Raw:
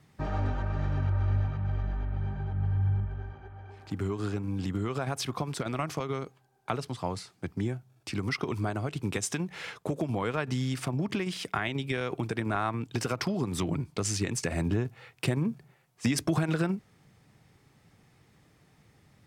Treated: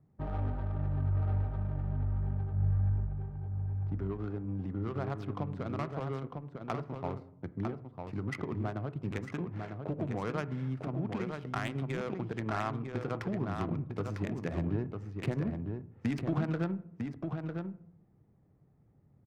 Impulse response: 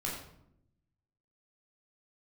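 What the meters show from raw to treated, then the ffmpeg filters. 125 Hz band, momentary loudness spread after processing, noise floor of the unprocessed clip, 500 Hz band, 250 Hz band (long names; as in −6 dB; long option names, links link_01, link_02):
−2.5 dB, 7 LU, −64 dBFS, −4.0 dB, −3.5 dB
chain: -filter_complex "[0:a]aecho=1:1:951:0.562,adynamicsmooth=sensitivity=2.5:basefreq=670,asplit=2[link_01][link_02];[1:a]atrim=start_sample=2205,lowpass=2200[link_03];[link_02][link_03]afir=irnorm=-1:irlink=0,volume=-16dB[link_04];[link_01][link_04]amix=inputs=2:normalize=0,volume=-5.5dB"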